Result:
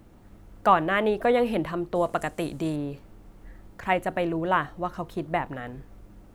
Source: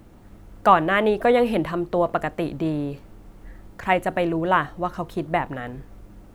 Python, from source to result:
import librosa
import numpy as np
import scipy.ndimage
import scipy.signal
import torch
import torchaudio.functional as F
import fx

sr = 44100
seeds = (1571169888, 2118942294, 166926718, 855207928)

y = fx.peak_eq(x, sr, hz=8500.0, db=14.5, octaves=1.5, at=(1.95, 2.76))
y = y * 10.0 ** (-4.0 / 20.0)